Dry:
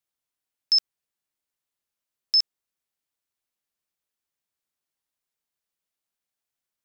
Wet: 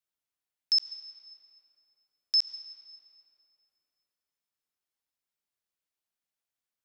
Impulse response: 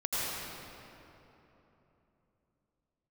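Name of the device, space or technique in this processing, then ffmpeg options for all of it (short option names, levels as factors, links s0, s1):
filtered reverb send: -filter_complex "[0:a]asplit=2[s0][s1];[s1]highpass=f=580:p=1,lowpass=6200[s2];[1:a]atrim=start_sample=2205[s3];[s2][s3]afir=irnorm=-1:irlink=0,volume=0.141[s4];[s0][s4]amix=inputs=2:normalize=0,volume=0.562"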